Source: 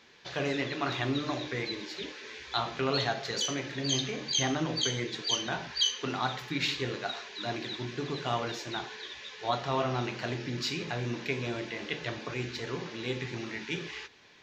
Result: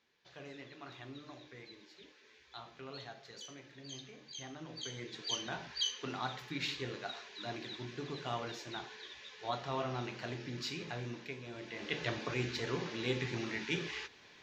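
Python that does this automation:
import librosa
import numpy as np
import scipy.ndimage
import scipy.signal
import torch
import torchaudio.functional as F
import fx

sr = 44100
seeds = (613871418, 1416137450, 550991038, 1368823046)

y = fx.gain(x, sr, db=fx.line((4.51, -18.5), (5.31, -7.5), (10.99, -7.5), (11.45, -14.0), (11.99, -1.0)))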